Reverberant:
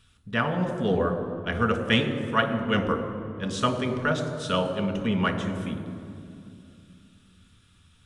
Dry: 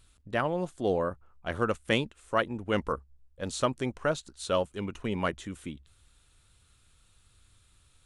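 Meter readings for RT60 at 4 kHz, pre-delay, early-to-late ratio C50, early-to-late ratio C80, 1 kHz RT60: 1.6 s, 3 ms, 7.5 dB, 8.5 dB, 2.3 s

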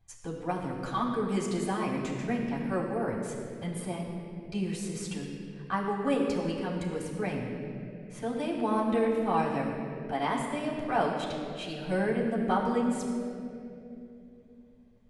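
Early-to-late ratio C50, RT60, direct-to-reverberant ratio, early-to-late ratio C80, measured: 3.0 dB, 2.9 s, -6.5 dB, 3.5 dB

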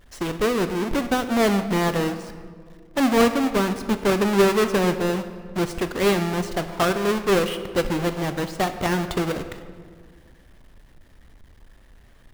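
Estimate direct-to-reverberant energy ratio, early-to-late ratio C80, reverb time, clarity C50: 9.0 dB, 11.5 dB, 1.9 s, 10.5 dB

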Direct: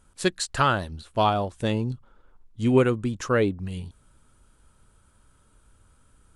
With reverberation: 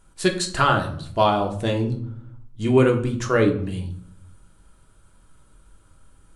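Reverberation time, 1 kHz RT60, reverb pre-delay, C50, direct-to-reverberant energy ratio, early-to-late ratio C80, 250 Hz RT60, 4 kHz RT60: 0.65 s, 0.60 s, 3 ms, 10.5 dB, 2.5 dB, 14.0 dB, 0.95 s, 0.40 s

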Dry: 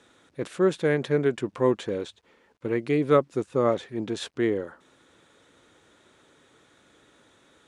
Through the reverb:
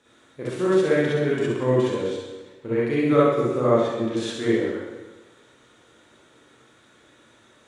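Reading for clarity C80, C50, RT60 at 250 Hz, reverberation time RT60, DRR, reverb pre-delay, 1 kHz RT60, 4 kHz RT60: 1.5 dB, -5.5 dB, 1.2 s, 1.2 s, -9.0 dB, 31 ms, 1.2 s, 1.2 s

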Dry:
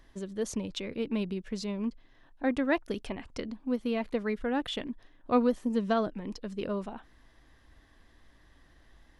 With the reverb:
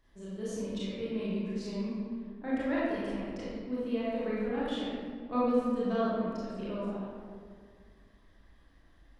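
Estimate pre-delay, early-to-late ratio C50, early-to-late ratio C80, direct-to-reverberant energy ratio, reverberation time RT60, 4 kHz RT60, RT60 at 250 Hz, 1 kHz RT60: 24 ms, -4.0 dB, -1.0 dB, -9.0 dB, 2.0 s, 1.0 s, 2.4 s, 1.8 s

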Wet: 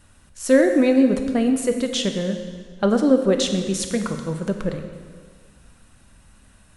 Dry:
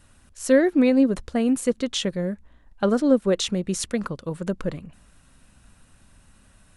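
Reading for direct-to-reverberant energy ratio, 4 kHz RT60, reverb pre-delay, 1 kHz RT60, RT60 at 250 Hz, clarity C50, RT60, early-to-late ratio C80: 5.5 dB, 1.6 s, 5 ms, 1.7 s, 1.6 s, 7.0 dB, 1.7 s, 8.0 dB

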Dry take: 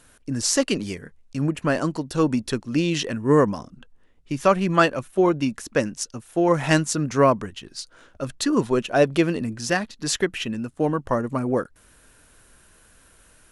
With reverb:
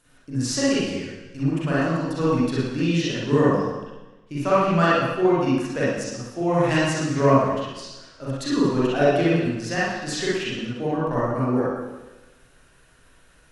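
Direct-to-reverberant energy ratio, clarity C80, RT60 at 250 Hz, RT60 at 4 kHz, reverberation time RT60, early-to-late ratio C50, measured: -9.5 dB, 1.0 dB, 1.1 s, 1.1 s, 1.1 s, -4.5 dB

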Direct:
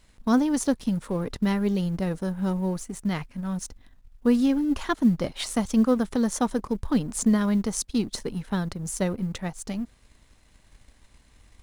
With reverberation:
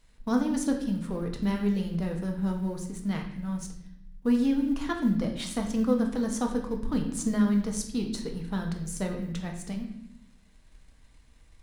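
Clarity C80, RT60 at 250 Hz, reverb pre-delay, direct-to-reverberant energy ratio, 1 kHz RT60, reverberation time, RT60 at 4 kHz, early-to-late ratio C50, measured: 9.5 dB, 1.2 s, 3 ms, 2.0 dB, 0.65 s, 0.75 s, 0.70 s, 7.0 dB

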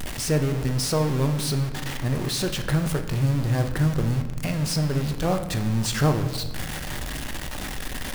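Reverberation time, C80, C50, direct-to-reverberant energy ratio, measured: 1.3 s, 11.5 dB, 9.5 dB, 6.0 dB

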